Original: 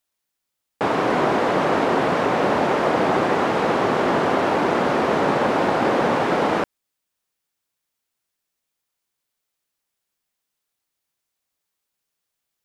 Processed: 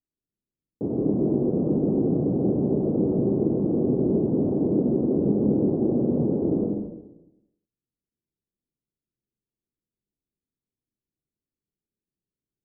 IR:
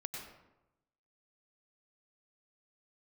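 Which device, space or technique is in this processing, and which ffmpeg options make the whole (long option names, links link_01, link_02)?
next room: -filter_complex "[0:a]lowpass=frequency=370:width=0.5412,lowpass=frequency=370:width=1.3066[link_01];[1:a]atrim=start_sample=2205[link_02];[link_01][link_02]afir=irnorm=-1:irlink=0,volume=4dB"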